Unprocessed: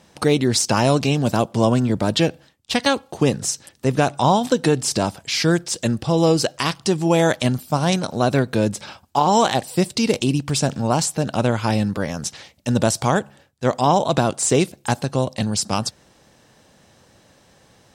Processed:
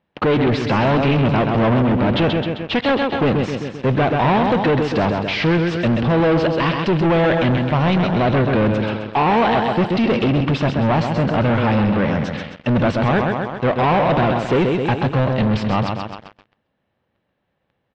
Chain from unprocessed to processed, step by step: on a send: feedback echo 0.131 s, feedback 53%, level -9 dB; on the sum: sample leveller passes 5; LPF 3100 Hz 24 dB/oct; gain -8.5 dB

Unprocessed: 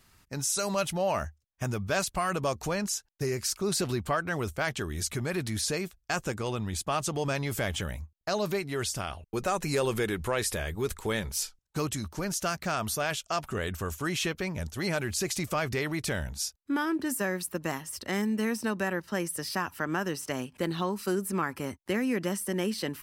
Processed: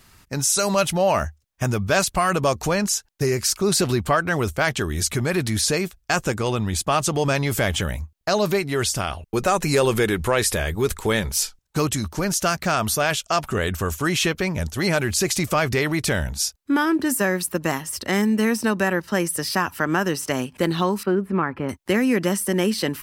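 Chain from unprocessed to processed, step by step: 21.03–21.69 air absorption 470 m; gain +9 dB

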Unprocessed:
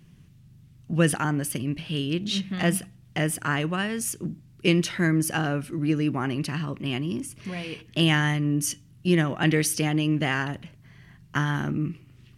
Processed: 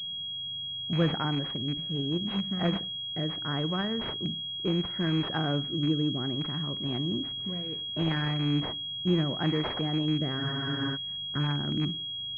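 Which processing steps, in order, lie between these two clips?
rattling part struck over -25 dBFS, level -18 dBFS; in parallel at -1 dB: limiter -16 dBFS, peak gain reduction 9 dB; on the sum: rotary speaker horn 0.7 Hz, later 5.5 Hz, at 10.21; on a send at -19 dB: reverb, pre-delay 55 ms; on the sum: spectral freeze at 10.41, 0.54 s; pulse-width modulation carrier 3300 Hz; gain -7.5 dB

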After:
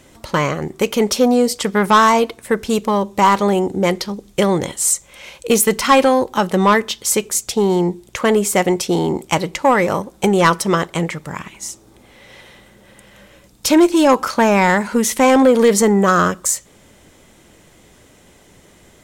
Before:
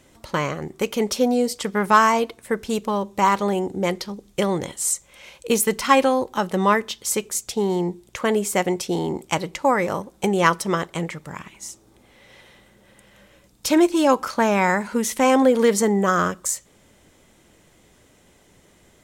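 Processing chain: soft clip -11 dBFS, distortion -16 dB; gain +7 dB

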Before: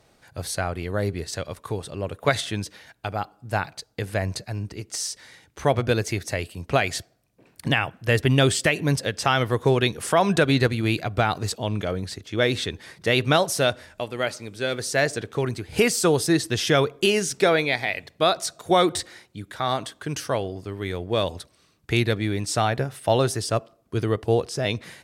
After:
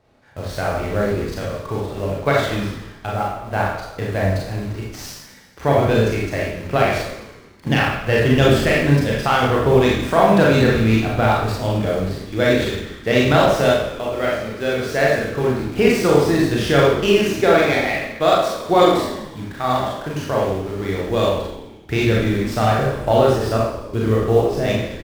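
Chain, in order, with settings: LPF 2000 Hz 6 dB/oct; in parallel at -6 dB: bit-crush 6-bit; on the sum: frequency-shifting echo 0.107 s, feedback 60%, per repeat -50 Hz, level -12.5 dB; Schroeder reverb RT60 0.64 s, combs from 28 ms, DRR -4 dB; running maximum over 3 samples; gain -2 dB

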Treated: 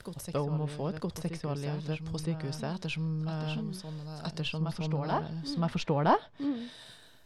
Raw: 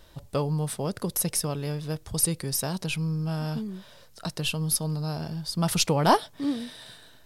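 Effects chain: reverse echo 0.966 s -7 dB; treble ducked by the level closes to 2400 Hz, closed at -22.5 dBFS; gain -4.5 dB

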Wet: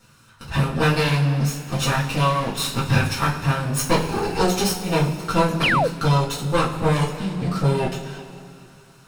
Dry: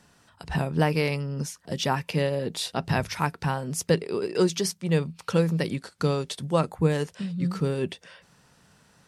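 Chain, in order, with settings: minimum comb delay 0.74 ms; two-slope reverb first 0.29 s, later 2.8 s, from -18 dB, DRR -7 dB; painted sound fall, 5.63–5.88, 430–3400 Hz -19 dBFS

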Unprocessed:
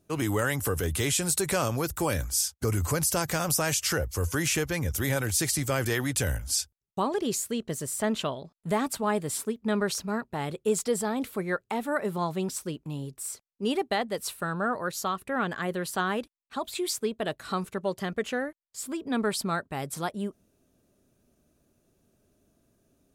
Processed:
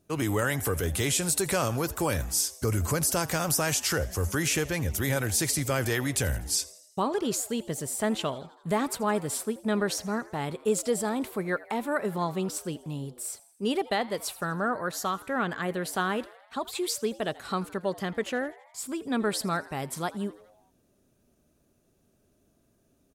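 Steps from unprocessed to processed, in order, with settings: frequency-shifting echo 82 ms, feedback 60%, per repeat +110 Hz, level -20.5 dB

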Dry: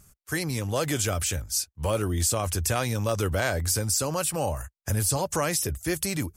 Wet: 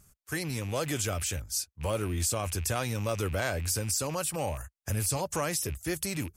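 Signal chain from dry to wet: rattling part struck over -31 dBFS, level -31 dBFS; gain -4.5 dB

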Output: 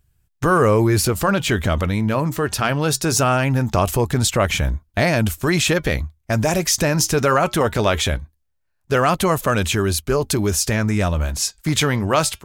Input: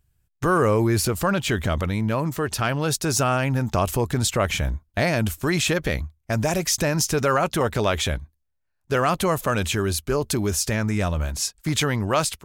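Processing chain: flange 0.21 Hz, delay 0.5 ms, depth 4.3 ms, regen -87%; gain +8.5 dB

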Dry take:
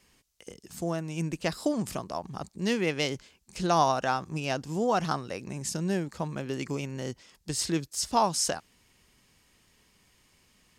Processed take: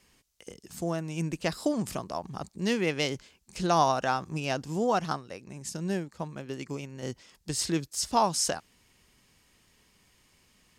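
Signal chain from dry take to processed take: 4.92–7.03 upward expander 1.5:1, over -41 dBFS

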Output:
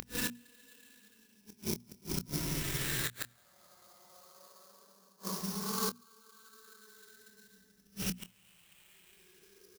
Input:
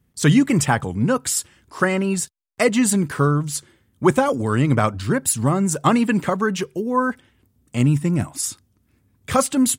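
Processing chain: wind noise 100 Hz -34 dBFS; reverse; compressor 6:1, threshold -24 dBFS, peak gain reduction 13.5 dB; reverse; air absorption 78 m; Paulstretch 17×, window 0.10 s, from 6.06; sample-rate reducer 5600 Hz, jitter 20%; tilt +3.5 dB/oct; flipped gate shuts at -18 dBFS, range -35 dB; notches 60/120/180/240 Hz; doubler 25 ms -11 dB; gain +1.5 dB

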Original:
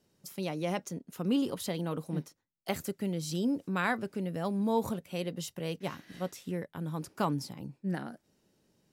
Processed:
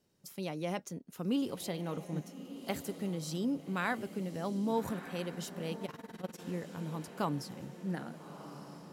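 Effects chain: diffused feedback echo 1.259 s, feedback 52%, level -11.5 dB; 5.85–6.41 AM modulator 20 Hz, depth 80%; gain -3.5 dB

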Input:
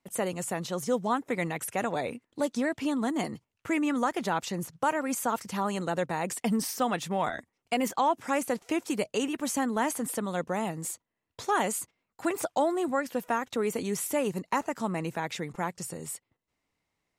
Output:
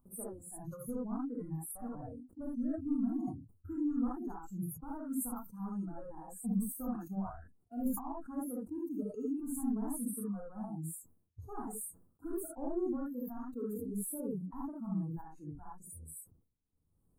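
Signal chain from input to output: soft clip -23 dBFS, distortion -14 dB; spectral noise reduction 24 dB; passive tone stack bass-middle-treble 10-0-1; upward compressor, threshold -58 dBFS; elliptic band-stop 1200–9100 Hz, stop band 40 dB; non-linear reverb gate 90 ms rising, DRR -4.5 dB; sustainer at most 110 dB/s; gain +11 dB

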